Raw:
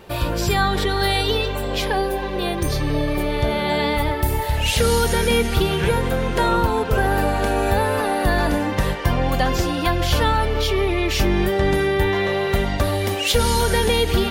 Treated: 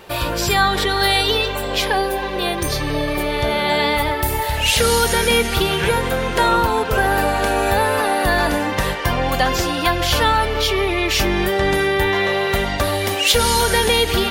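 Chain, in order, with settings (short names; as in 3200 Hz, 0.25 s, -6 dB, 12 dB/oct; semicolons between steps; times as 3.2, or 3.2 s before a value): low shelf 440 Hz -8.5 dB; gain +5.5 dB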